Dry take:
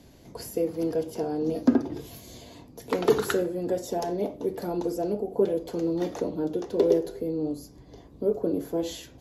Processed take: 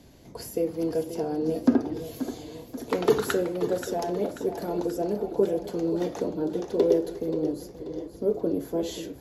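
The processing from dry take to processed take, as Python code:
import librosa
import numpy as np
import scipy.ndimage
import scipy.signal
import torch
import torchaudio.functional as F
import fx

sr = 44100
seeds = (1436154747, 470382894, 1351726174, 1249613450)

y = x + 10.0 ** (-15.0 / 20.0) * np.pad(x, (int(529 * sr / 1000.0), 0))[:len(x)]
y = fx.echo_warbled(y, sr, ms=533, feedback_pct=57, rate_hz=2.8, cents=83, wet_db=-12.5)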